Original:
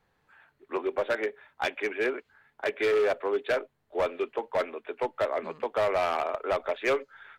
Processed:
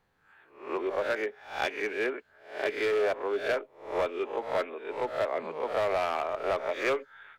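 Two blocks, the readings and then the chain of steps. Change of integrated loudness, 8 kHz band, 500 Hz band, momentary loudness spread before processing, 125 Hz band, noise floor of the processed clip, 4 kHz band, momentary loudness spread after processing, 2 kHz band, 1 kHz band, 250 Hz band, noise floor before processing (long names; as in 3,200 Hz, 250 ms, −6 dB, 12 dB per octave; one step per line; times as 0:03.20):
−1.5 dB, can't be measured, −1.5 dB, 8 LU, −1.0 dB, −64 dBFS, −0.5 dB, 7 LU, −0.5 dB, −1.0 dB, −1.5 dB, −74 dBFS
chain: peak hold with a rise ahead of every peak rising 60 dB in 0.47 s
level −3 dB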